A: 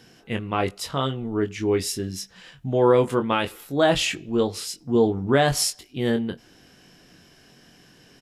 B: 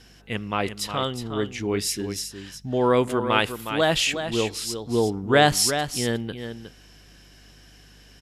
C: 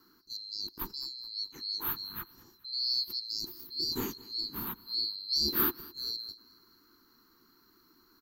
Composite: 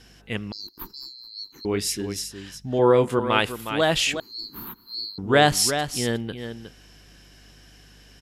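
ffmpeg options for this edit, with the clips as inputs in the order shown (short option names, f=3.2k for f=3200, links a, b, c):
-filter_complex "[2:a]asplit=2[a][b];[1:a]asplit=4[c][d][e][f];[c]atrim=end=0.522[g];[a]atrim=start=0.518:end=1.652[h];[d]atrim=start=1.648:end=2.792[i];[0:a]atrim=start=2.788:end=3.192[j];[e]atrim=start=3.188:end=4.202[k];[b]atrim=start=4.198:end=5.182[l];[f]atrim=start=5.178[m];[g][h]acrossfade=d=0.004:c1=hsin:c2=hsin[n];[n][i]acrossfade=d=0.004:c1=hsin:c2=hsin[o];[o][j]acrossfade=d=0.004:c1=hsin:c2=hsin[p];[p][k]acrossfade=d=0.004:c1=hsin:c2=hsin[q];[q][l]acrossfade=d=0.004:c1=hsin:c2=hsin[r];[r][m]acrossfade=d=0.004:c1=hsin:c2=hsin"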